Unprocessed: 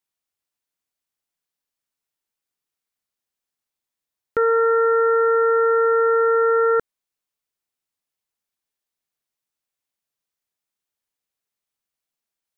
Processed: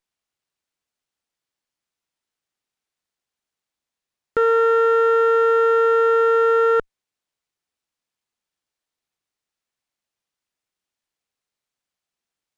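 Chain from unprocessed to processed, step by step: sliding maximum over 3 samples; trim +1 dB

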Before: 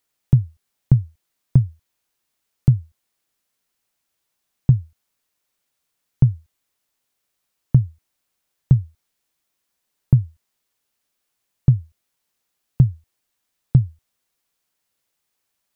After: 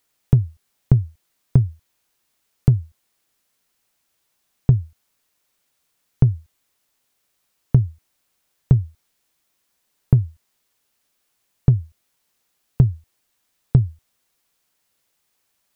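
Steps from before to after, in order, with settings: in parallel at -4 dB: saturation -13.5 dBFS, distortion -9 dB; on the sum: compression, threshold -10 dBFS, peak gain reduction 4.5 dB; trim +1 dB

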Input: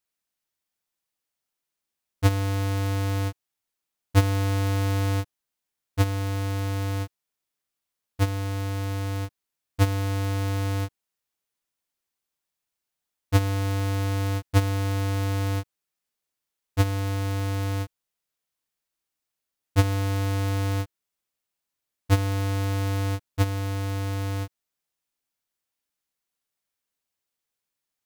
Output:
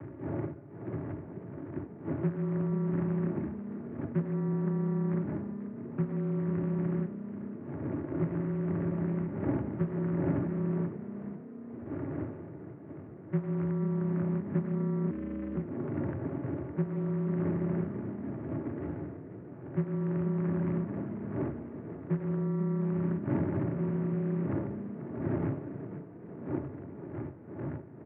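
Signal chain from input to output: resonances exaggerated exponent 2; wind noise 180 Hz -34 dBFS; comb 3.7 ms, depth 96%; compression 6:1, threshold -25 dBFS, peak gain reduction 12 dB; 15.10–15.56 s: robot voice 245 Hz; short-mantissa float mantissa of 2-bit; frequency shift +170 Hz; frequency-shifting echo 488 ms, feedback 54%, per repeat +32 Hz, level -12 dB; on a send at -13.5 dB: reverberation RT60 1.7 s, pre-delay 3 ms; on the sum: mistuned SSB -98 Hz 240–2100 Hz

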